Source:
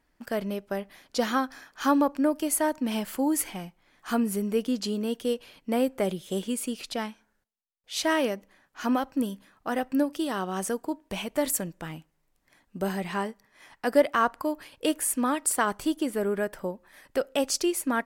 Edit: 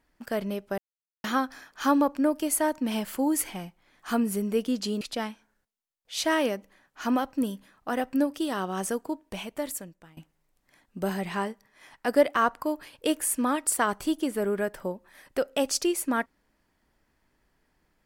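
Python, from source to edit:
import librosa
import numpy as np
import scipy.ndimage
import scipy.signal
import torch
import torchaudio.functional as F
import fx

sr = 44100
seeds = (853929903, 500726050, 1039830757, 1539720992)

y = fx.edit(x, sr, fx.silence(start_s=0.78, length_s=0.46),
    fx.cut(start_s=5.01, length_s=1.79),
    fx.fade_out_to(start_s=10.79, length_s=1.17, floor_db=-21.5), tone=tone)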